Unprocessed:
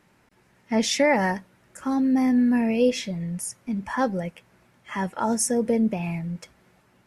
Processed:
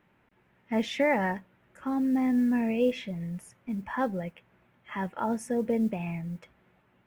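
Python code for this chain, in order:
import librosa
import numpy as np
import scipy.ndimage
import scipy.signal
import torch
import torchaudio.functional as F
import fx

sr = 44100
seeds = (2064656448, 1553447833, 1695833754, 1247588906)

y = fx.band_shelf(x, sr, hz=7100.0, db=-15.0, octaves=1.7)
y = fx.mod_noise(y, sr, seeds[0], snr_db=35)
y = F.gain(torch.from_numpy(y), -5.0).numpy()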